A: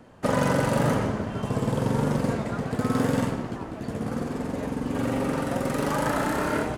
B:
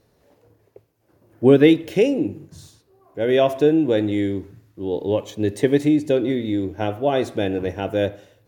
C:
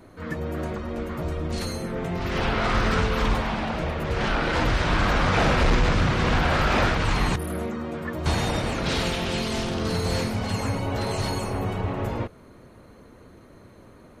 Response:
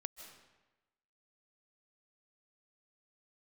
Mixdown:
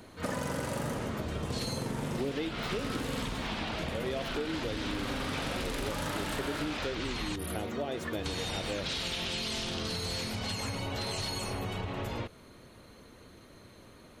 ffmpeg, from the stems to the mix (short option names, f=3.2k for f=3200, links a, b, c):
-filter_complex "[0:a]volume=-5.5dB[a];[1:a]adelay=750,volume=-11dB[b];[2:a]equalizer=f=3.5k:w=1.1:g=6.5,acompressor=threshold=-24dB:ratio=6,volume=-5.5dB[c];[a][b][c]amix=inputs=3:normalize=0,highshelf=f=2.9k:g=8,acompressor=threshold=-31dB:ratio=6"